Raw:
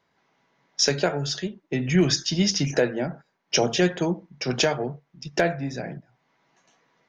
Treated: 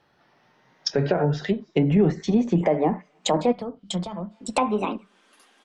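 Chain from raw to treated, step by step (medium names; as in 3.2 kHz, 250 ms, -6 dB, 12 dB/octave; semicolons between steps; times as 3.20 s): gliding tape speed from 85% -> 166%; peak limiter -16 dBFS, peak gain reduction 7.5 dB; on a send at -22 dB: delay 264 ms -20 dB + reverberation, pre-delay 7 ms; on the sum: low-pass that closes with the level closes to 1 kHz, closed at -22.5 dBFS; time-frequency box 3.52–4.31 s, 210–2900 Hz -13 dB; trim +6.5 dB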